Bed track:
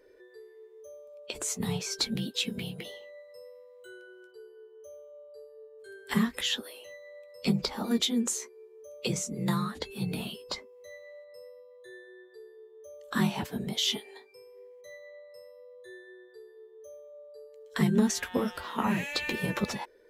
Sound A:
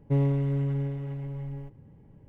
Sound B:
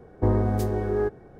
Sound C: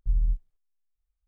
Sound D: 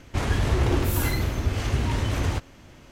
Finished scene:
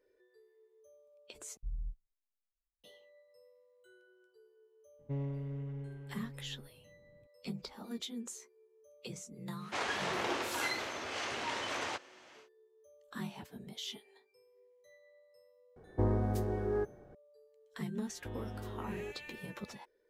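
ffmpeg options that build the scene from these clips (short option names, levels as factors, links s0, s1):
-filter_complex "[2:a]asplit=2[s0][s1];[0:a]volume=0.188[s2];[1:a]aresample=16000,aresample=44100[s3];[4:a]highpass=580,lowpass=6900[s4];[s1]acompressor=threshold=0.0794:ratio=6:attack=3.2:release=140:knee=1:detection=peak[s5];[s2]asplit=2[s6][s7];[s6]atrim=end=1.574[s8];[3:a]atrim=end=1.27,asetpts=PTS-STARTPTS,volume=0.168[s9];[s7]atrim=start=2.836[s10];[s3]atrim=end=2.28,asetpts=PTS-STARTPTS,volume=0.211,afade=t=in:d=0.004:c=hsin,afade=t=out:st=2.276:d=0.004:c=hsin,adelay=4990[s11];[s4]atrim=end=2.91,asetpts=PTS-STARTPTS,volume=0.708,afade=t=in:d=0.1,afade=t=out:st=2.81:d=0.1,adelay=9580[s12];[s0]atrim=end=1.39,asetpts=PTS-STARTPTS,volume=0.376,afade=t=in:d=0.004:c=hsin,afade=t=out:st=1.386:d=0.004:c=hsin,adelay=15760[s13];[s5]atrim=end=1.39,asetpts=PTS-STARTPTS,volume=0.15,afade=t=in:d=0.004:c=hsin,afade=t=out:st=1.386:d=0.004:c=hsin,adelay=18030[s14];[s8][s9]acrossfade=d=0.004:c1=hsin:c2=hsin[s15];[s15][s10]acrossfade=d=0.004:c1=hsin:c2=hsin[s16];[s16][s11][s12][s13][s14]amix=inputs=5:normalize=0"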